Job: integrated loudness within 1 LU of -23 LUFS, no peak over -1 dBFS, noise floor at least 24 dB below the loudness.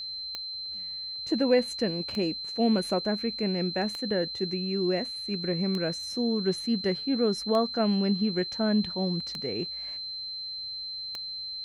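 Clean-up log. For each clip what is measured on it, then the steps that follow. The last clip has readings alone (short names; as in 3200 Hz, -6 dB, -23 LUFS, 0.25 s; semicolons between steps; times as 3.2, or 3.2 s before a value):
clicks 7; steady tone 4100 Hz; tone level -34 dBFS; loudness -28.5 LUFS; peak -11.5 dBFS; loudness target -23.0 LUFS
-> de-click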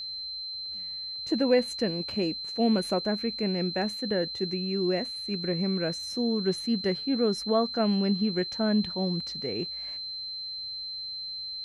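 clicks 0; steady tone 4100 Hz; tone level -34 dBFS
-> notch 4100 Hz, Q 30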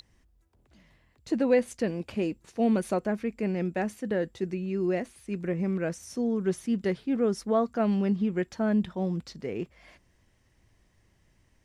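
steady tone none; loudness -29.0 LUFS; peak -12.0 dBFS; loudness target -23.0 LUFS
-> gain +6 dB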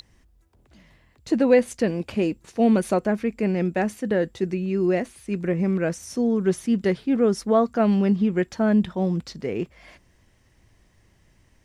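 loudness -23.0 LUFS; peak -6.0 dBFS; noise floor -60 dBFS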